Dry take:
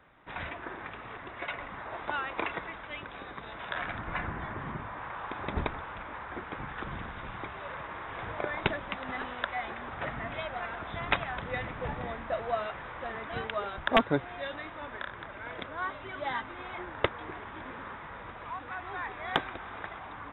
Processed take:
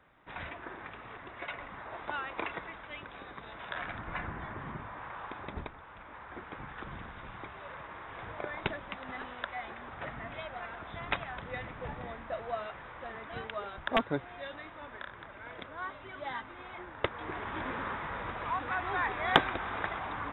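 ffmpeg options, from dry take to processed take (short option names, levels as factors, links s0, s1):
-af "volume=5.01,afade=t=out:st=5.23:d=0.5:silence=0.375837,afade=t=in:st=5.73:d=0.7:silence=0.446684,afade=t=in:st=17.02:d=0.54:silence=0.298538"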